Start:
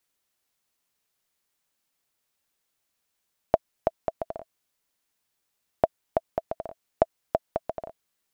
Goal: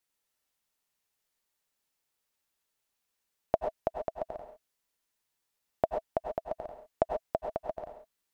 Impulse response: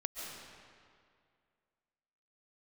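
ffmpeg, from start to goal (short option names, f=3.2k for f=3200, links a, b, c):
-filter_complex "[1:a]atrim=start_sample=2205,afade=t=out:st=0.25:d=0.01,atrim=end_sample=11466,asetrate=61740,aresample=44100[a];[0:a][a]afir=irnorm=-1:irlink=0"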